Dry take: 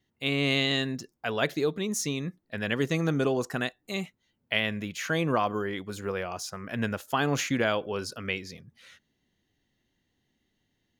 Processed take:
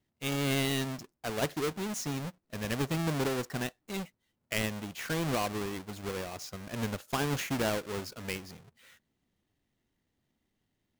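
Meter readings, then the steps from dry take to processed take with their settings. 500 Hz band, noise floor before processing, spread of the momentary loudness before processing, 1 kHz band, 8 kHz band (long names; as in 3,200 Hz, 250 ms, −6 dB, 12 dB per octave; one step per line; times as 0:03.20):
−5.0 dB, −77 dBFS, 9 LU, −4.5 dB, −2.0 dB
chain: each half-wave held at its own peak
level −9 dB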